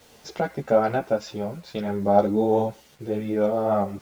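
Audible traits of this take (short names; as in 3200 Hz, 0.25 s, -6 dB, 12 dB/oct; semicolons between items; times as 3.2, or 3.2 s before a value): tremolo triangle 0.55 Hz, depth 35%; a quantiser's noise floor 10-bit, dither none; a shimmering, thickened sound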